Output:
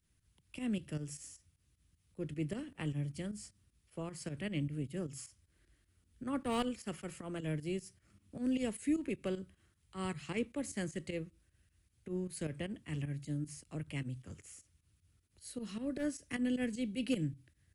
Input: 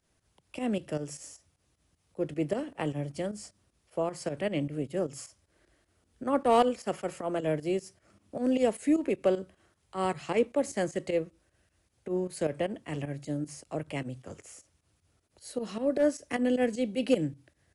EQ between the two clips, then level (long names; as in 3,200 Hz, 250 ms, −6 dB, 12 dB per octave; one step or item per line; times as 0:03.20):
guitar amp tone stack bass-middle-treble 6-0-2
parametric band 5,800 Hz −5.5 dB 1.4 octaves
+14.0 dB